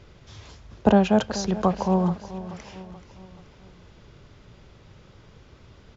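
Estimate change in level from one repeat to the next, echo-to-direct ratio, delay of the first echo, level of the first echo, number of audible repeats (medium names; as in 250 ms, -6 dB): -6.5 dB, -14.0 dB, 430 ms, -15.0 dB, 4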